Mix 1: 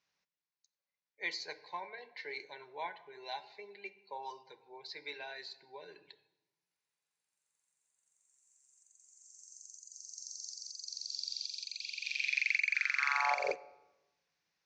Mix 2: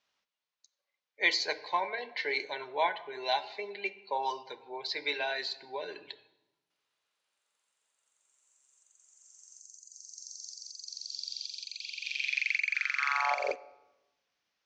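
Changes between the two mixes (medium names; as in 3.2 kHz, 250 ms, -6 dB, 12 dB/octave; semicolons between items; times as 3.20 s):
speech +10.0 dB; master: add graphic EQ with 31 bands 160 Hz -9 dB, 250 Hz +6 dB, 630 Hz +5 dB, 1.25 kHz +5 dB, 3.15 kHz +7 dB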